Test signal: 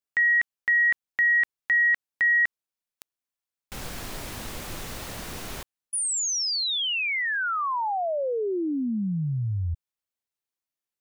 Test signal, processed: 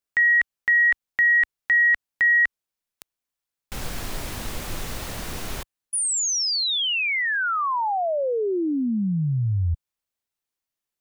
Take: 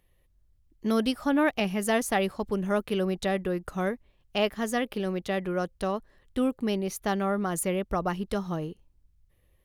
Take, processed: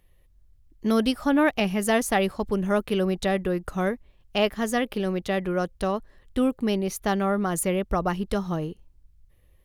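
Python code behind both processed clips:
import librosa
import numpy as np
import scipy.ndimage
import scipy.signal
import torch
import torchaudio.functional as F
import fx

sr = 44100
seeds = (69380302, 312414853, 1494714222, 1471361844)

y = fx.low_shelf(x, sr, hz=65.0, db=6.0)
y = y * librosa.db_to_amplitude(3.0)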